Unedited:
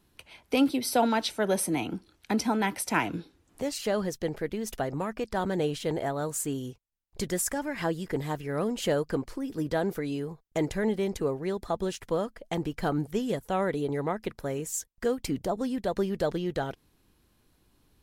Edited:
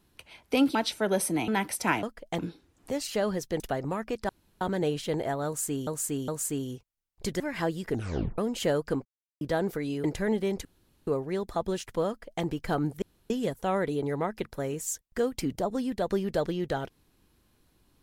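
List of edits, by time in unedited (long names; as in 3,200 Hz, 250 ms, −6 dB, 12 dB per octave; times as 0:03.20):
0:00.75–0:01.13: remove
0:01.86–0:02.55: remove
0:04.31–0:04.69: remove
0:05.38: splice in room tone 0.32 s
0:06.23–0:06.64: repeat, 3 plays
0:07.35–0:07.62: remove
0:08.12: tape stop 0.48 s
0:09.27–0:09.63: silence
0:10.26–0:10.60: remove
0:11.21: splice in room tone 0.42 s
0:12.22–0:12.58: duplicate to 0:03.10
0:13.16: splice in room tone 0.28 s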